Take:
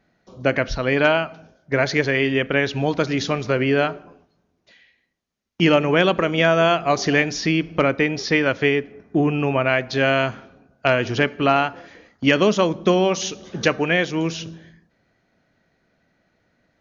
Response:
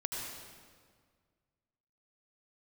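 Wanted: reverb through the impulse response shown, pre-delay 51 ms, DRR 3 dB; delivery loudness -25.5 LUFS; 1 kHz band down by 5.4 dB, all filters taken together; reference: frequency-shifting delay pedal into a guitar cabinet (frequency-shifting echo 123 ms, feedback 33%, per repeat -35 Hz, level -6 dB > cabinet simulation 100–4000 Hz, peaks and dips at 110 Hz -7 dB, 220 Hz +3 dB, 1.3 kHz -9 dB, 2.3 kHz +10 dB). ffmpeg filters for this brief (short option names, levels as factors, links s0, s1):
-filter_complex "[0:a]equalizer=f=1000:t=o:g=-5.5,asplit=2[s0][s1];[1:a]atrim=start_sample=2205,adelay=51[s2];[s1][s2]afir=irnorm=-1:irlink=0,volume=0.531[s3];[s0][s3]amix=inputs=2:normalize=0,asplit=5[s4][s5][s6][s7][s8];[s5]adelay=123,afreqshift=-35,volume=0.501[s9];[s6]adelay=246,afreqshift=-70,volume=0.166[s10];[s7]adelay=369,afreqshift=-105,volume=0.0543[s11];[s8]adelay=492,afreqshift=-140,volume=0.018[s12];[s4][s9][s10][s11][s12]amix=inputs=5:normalize=0,highpass=100,equalizer=f=110:t=q:w=4:g=-7,equalizer=f=220:t=q:w=4:g=3,equalizer=f=1300:t=q:w=4:g=-9,equalizer=f=2300:t=q:w=4:g=10,lowpass=f=4000:w=0.5412,lowpass=f=4000:w=1.3066,volume=0.355"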